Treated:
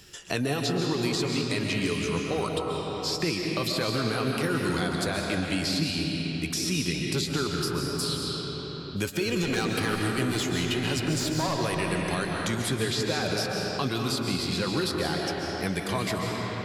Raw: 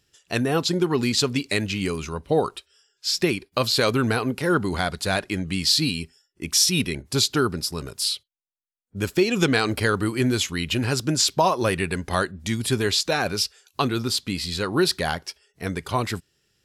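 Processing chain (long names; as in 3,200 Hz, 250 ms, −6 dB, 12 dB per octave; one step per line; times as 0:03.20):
0:09.28–0:11.55: asymmetric clip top −21.5 dBFS
brickwall limiter −15.5 dBFS, peak gain reduction 9.5 dB
flanger 0.83 Hz, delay 5.1 ms, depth 2.2 ms, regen +65%
convolution reverb RT60 3.1 s, pre-delay 95 ms, DRR 0.5 dB
multiband upward and downward compressor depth 70%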